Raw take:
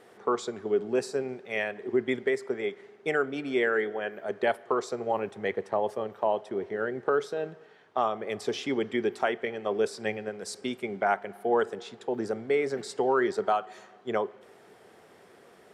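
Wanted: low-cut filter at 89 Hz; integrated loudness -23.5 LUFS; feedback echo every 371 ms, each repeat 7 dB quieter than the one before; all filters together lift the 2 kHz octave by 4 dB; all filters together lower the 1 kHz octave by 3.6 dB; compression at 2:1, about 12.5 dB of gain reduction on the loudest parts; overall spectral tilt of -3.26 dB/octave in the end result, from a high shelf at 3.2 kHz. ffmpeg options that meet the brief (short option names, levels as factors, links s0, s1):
-af "highpass=89,equalizer=f=1000:t=o:g=-7.5,equalizer=f=2000:t=o:g=5.5,highshelf=f=3200:g=6,acompressor=threshold=0.00562:ratio=2,aecho=1:1:371|742|1113|1484|1855:0.447|0.201|0.0905|0.0407|0.0183,volume=6.68"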